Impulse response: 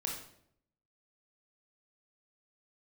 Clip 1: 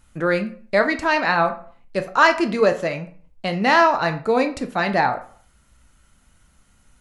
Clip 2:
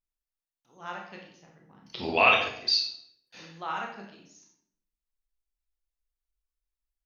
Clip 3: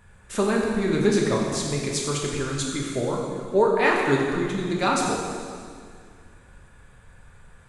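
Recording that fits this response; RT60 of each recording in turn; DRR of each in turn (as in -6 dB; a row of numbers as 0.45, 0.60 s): 2; 0.50, 0.70, 2.1 s; 7.0, -1.0, -2.0 dB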